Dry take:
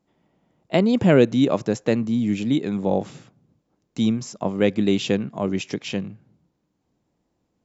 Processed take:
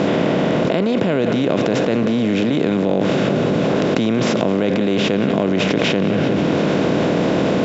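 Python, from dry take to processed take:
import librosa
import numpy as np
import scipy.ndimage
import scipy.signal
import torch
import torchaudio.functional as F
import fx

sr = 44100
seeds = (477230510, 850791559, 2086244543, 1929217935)

p1 = fx.bin_compress(x, sr, power=0.4)
p2 = scipy.signal.sosfilt(scipy.signal.butter(2, 4500.0, 'lowpass', fs=sr, output='sos'), p1)
p3 = fx.low_shelf(p2, sr, hz=65.0, db=-12.0)
p4 = p3 + fx.echo_feedback(p3, sr, ms=182, feedback_pct=55, wet_db=-14, dry=0)
p5 = fx.env_flatten(p4, sr, amount_pct=100)
y = p5 * 10.0 ** (-7.0 / 20.0)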